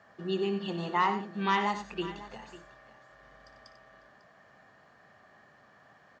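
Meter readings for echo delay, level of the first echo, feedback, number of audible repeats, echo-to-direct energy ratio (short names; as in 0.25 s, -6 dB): 58 ms, -15.0 dB, no steady repeat, 3, -8.5 dB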